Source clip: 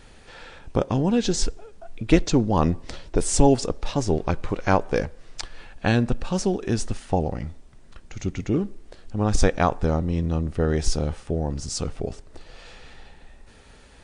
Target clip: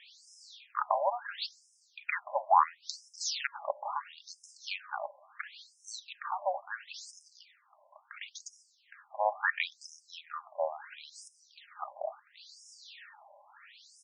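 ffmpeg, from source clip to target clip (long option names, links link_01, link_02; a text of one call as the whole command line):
ffmpeg -i in.wav -af "aecho=1:1:4.9:0.33,aeval=exprs='0.562*(abs(mod(val(0)/0.562+3,4)-2)-1)':channel_layout=same,afftfilt=real='re*between(b*sr/1024,740*pow(7200/740,0.5+0.5*sin(2*PI*0.73*pts/sr))/1.41,740*pow(7200/740,0.5+0.5*sin(2*PI*0.73*pts/sr))*1.41)':imag='im*between(b*sr/1024,740*pow(7200/740,0.5+0.5*sin(2*PI*0.73*pts/sr))/1.41,740*pow(7200/740,0.5+0.5*sin(2*PI*0.73*pts/sr))*1.41)':win_size=1024:overlap=0.75,volume=4dB" out.wav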